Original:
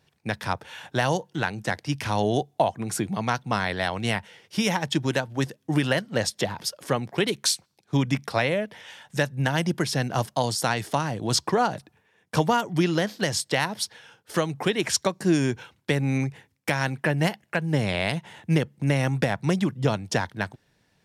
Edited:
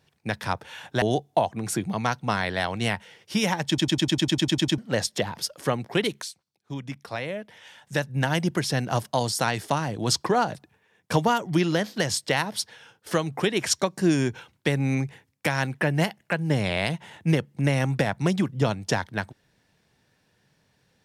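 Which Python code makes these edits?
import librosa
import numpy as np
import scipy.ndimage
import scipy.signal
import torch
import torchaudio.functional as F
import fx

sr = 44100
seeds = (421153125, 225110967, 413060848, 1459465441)

y = fx.edit(x, sr, fx.cut(start_s=1.02, length_s=1.23),
    fx.stutter_over(start_s=4.91, slice_s=0.1, count=11),
    fx.fade_in_from(start_s=7.45, length_s=2.02, curve='qua', floor_db=-13.5), tone=tone)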